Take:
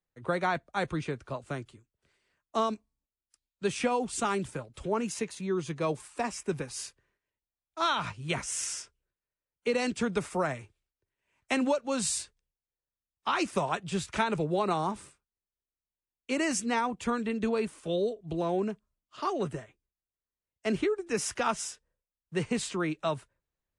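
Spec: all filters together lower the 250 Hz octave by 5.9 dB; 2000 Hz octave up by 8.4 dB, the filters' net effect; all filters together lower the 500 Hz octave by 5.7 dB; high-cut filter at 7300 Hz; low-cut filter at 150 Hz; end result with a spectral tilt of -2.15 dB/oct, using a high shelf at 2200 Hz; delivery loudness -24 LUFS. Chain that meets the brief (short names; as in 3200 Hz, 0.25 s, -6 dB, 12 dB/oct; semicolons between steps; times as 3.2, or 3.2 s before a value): HPF 150 Hz; LPF 7300 Hz; bell 250 Hz -5 dB; bell 500 Hz -6.5 dB; bell 2000 Hz +9 dB; high shelf 2200 Hz +4 dB; gain +6 dB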